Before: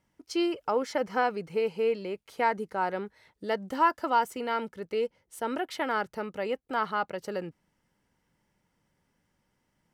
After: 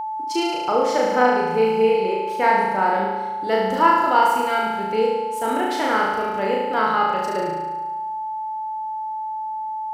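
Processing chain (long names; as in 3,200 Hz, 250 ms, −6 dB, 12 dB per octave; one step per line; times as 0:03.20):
flutter between parallel walls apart 6.2 metres, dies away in 1.2 s
steady tone 870 Hz −30 dBFS
level +5 dB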